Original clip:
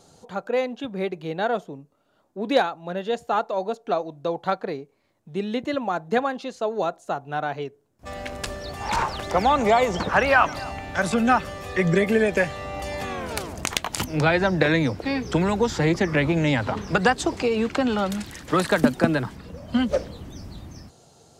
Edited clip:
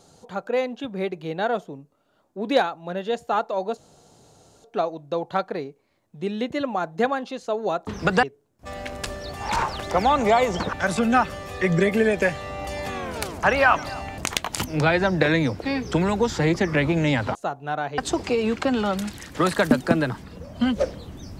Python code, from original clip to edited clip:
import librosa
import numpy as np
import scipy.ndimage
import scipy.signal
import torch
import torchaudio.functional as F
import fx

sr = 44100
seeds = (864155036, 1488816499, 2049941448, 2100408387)

y = fx.edit(x, sr, fx.insert_room_tone(at_s=3.77, length_s=0.87),
    fx.swap(start_s=7.0, length_s=0.63, other_s=16.75, other_length_s=0.36),
    fx.move(start_s=10.13, length_s=0.75, to_s=13.58), tone=tone)